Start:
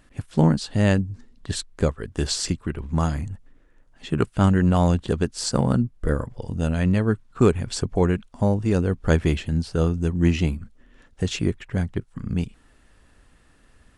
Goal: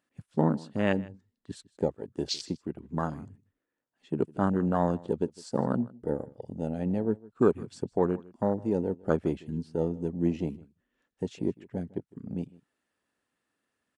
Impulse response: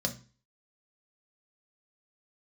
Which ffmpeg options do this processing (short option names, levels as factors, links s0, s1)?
-af "afwtdn=0.0447,highpass=220,aecho=1:1:156:0.0794,volume=0.668"